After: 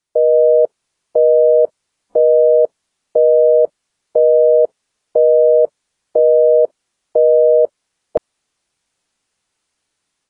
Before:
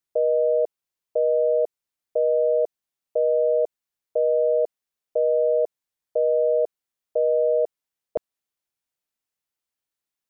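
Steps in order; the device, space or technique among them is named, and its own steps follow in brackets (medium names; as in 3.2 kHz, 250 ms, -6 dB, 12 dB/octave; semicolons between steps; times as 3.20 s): low-bitrate web radio (level rider gain up to 8 dB; peak limiter -12 dBFS, peak gain reduction 6 dB; trim +8 dB; AAC 32 kbps 22.05 kHz)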